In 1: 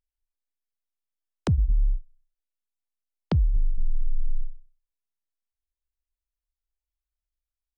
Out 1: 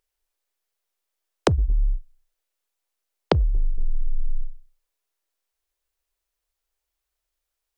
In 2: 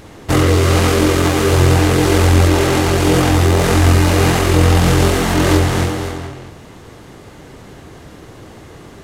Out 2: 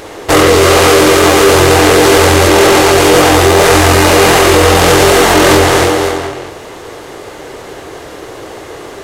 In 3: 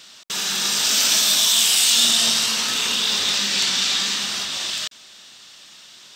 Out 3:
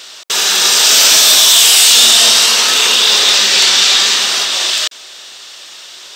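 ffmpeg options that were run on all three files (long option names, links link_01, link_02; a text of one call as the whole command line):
ffmpeg -i in.wav -af "lowshelf=frequency=290:width_type=q:width=1.5:gain=-10.5,apsyclip=13dB,volume=-1.5dB" out.wav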